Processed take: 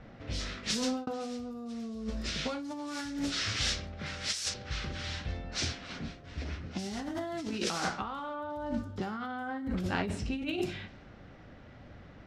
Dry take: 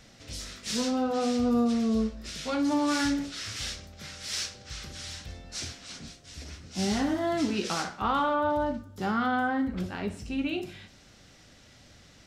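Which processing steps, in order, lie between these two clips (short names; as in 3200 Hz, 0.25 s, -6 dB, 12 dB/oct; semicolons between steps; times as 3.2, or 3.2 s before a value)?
low-pass opened by the level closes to 1300 Hz, open at -27.5 dBFS; 0.62–1.07 fade out; 4.06–4.54 bell 10000 Hz +10.5 dB 1.6 oct; negative-ratio compressor -35 dBFS, ratio -1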